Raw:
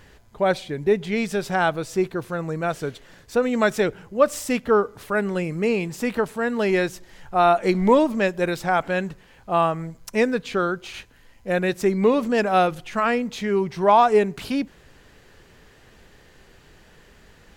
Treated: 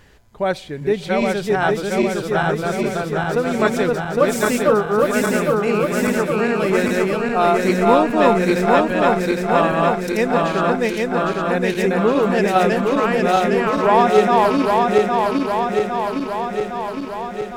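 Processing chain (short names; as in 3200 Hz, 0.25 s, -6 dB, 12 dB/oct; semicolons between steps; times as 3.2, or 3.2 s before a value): regenerating reverse delay 0.405 s, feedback 81%, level -1 dB; 4.24–6.14 high shelf 11000 Hz +6 dB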